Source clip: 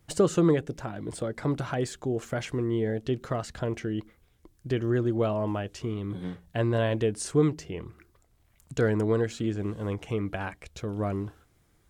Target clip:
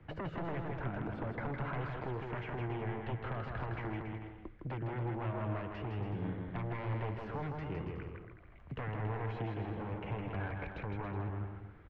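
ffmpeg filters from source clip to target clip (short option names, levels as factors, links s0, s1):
-filter_complex "[0:a]acrossover=split=120|260|1600[s0][s1][s2][s3];[s0]acompressor=threshold=0.0158:ratio=4[s4];[s1]acompressor=threshold=0.00794:ratio=4[s5];[s2]acompressor=threshold=0.0126:ratio=4[s6];[s3]acompressor=threshold=0.00708:ratio=4[s7];[s4][s5][s6][s7]amix=inputs=4:normalize=0,aeval=exprs='0.0282*(abs(mod(val(0)/0.0282+3,4)-2)-1)':c=same,acompressor=threshold=0.00501:ratio=2.5,asoftclip=type=tanh:threshold=0.01,lowpass=f=2400:w=0.5412,lowpass=f=2400:w=1.3066,asplit=2[s8][s9];[s9]aecho=0:1:160|280|370|437.5|488.1:0.631|0.398|0.251|0.158|0.1[s10];[s8][s10]amix=inputs=2:normalize=0,volume=2.24"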